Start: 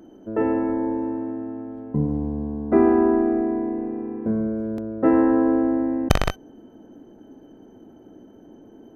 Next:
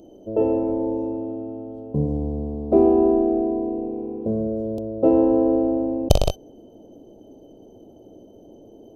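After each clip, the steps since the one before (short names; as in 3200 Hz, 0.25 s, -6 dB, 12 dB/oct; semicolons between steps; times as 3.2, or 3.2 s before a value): EQ curve 100 Hz 0 dB, 250 Hz -7 dB, 590 Hz +4 dB, 1900 Hz -30 dB, 2800 Hz -3 dB, 4500 Hz 0 dB; gain +3.5 dB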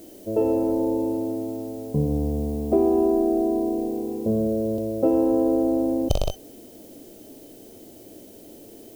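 harmonic-percussive split harmonic +7 dB; compressor 2.5:1, threshold -14 dBFS, peak gain reduction 7 dB; added noise blue -47 dBFS; gain -4.5 dB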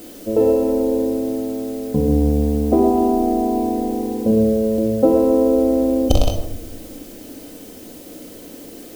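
requantised 8-bit, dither none; shoebox room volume 3300 m³, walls furnished, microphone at 2 m; gain +5 dB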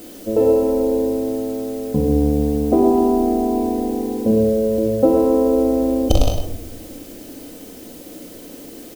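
echo 0.102 s -10.5 dB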